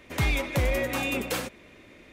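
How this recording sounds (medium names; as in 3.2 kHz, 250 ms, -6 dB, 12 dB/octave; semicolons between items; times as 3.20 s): noise floor -53 dBFS; spectral tilt -5.0 dB/octave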